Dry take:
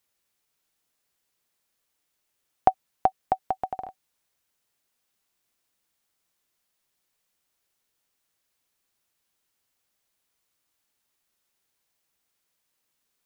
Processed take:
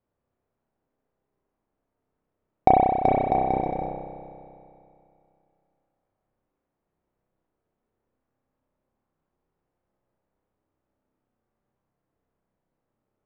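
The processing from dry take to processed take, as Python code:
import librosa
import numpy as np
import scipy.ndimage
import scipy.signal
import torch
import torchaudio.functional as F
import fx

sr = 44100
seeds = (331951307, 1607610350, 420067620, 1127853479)

y = fx.halfwave_hold(x, sr)
y = scipy.signal.sosfilt(scipy.signal.bessel(2, 530.0, 'lowpass', norm='mag', fs=sr, output='sos'), y)
y = fx.dynamic_eq(y, sr, hz=320.0, q=0.94, threshold_db=-42.0, ratio=4.0, max_db=3)
y = fx.rev_spring(y, sr, rt60_s=2.6, pass_ms=(31,), chirp_ms=65, drr_db=0.0)
y = fx.sustainer(y, sr, db_per_s=38.0)
y = y * librosa.db_to_amplitude(3.0)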